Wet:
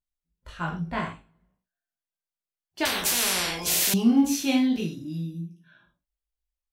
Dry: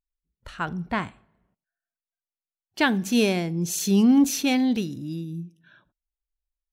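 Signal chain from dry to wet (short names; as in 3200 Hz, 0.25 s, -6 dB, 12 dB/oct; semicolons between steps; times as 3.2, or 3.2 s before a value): chorus 0.55 Hz, delay 16 ms, depth 2.7 ms; non-linear reverb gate 0.15 s falling, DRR -0.5 dB; 2.85–3.94 spectral compressor 10:1; gain -2.5 dB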